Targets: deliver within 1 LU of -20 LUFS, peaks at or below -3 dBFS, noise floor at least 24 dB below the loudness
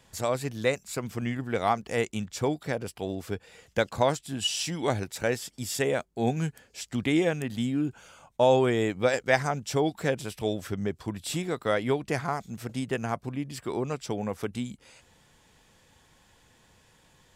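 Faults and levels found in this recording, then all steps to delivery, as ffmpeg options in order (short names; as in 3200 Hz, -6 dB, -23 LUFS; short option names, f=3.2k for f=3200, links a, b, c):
loudness -29.0 LUFS; peak -9.5 dBFS; loudness target -20.0 LUFS
-> -af "volume=9dB,alimiter=limit=-3dB:level=0:latency=1"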